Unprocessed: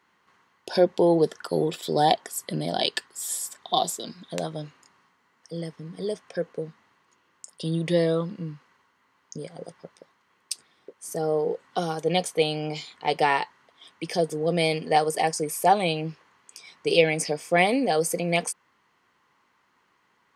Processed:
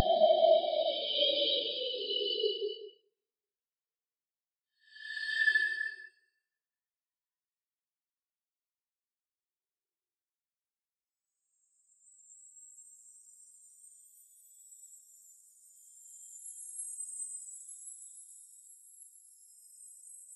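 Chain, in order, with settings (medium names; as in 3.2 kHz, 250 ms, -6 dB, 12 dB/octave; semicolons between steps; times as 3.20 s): Paulstretch 33×, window 0.05 s, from 2.81 s; Chebyshev shaper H 8 -31 dB, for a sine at -10.5 dBFS; spectral contrast expander 2.5:1; trim -1.5 dB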